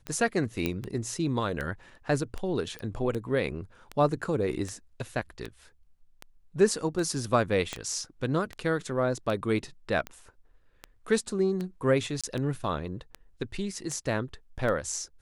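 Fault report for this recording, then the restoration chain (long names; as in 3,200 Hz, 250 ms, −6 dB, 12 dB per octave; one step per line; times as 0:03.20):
scratch tick 78 rpm −21 dBFS
0:00.66: click −14 dBFS
0:02.79: click −24 dBFS
0:07.73: click −18 dBFS
0:12.21–0:12.24: drop-out 26 ms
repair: click removal
repair the gap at 0:12.21, 26 ms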